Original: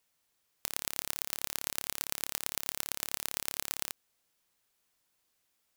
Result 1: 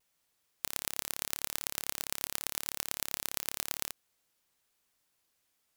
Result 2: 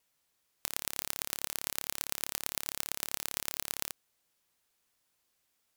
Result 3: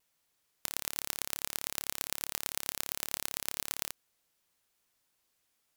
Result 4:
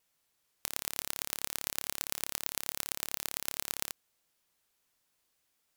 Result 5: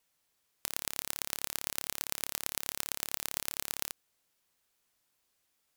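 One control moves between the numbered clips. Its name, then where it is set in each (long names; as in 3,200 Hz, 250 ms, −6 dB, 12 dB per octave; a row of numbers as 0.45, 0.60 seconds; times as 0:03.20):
pitch vibrato, speed: 0.85, 5, 1.4, 3.4, 12 Hertz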